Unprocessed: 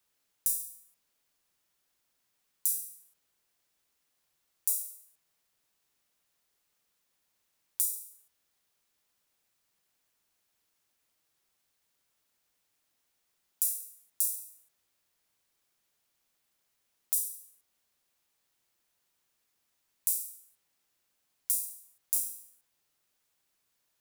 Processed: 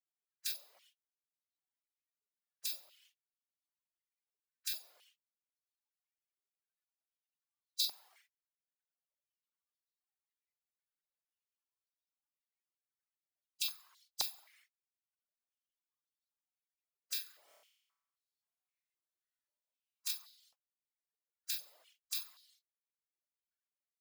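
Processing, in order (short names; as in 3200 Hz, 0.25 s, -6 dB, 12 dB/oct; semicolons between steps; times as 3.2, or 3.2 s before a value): spectral gate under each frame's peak -25 dB weak; reverb removal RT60 0.79 s; 17.45–20.11 flutter echo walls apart 4.8 m, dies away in 0.94 s; stepped high-pass 3.8 Hz 420–4000 Hz; gain +15 dB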